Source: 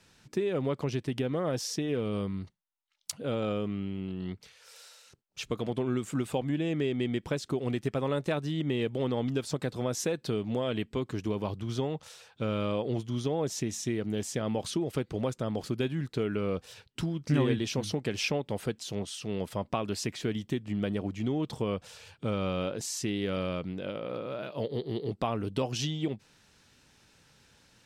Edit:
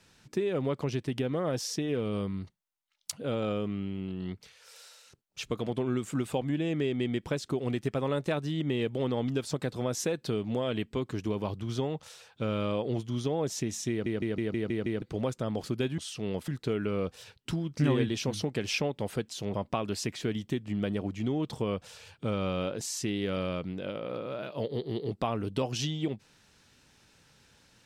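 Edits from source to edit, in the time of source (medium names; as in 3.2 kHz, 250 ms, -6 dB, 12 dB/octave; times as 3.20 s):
13.90 s: stutter in place 0.16 s, 7 plays
19.04–19.54 s: move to 15.98 s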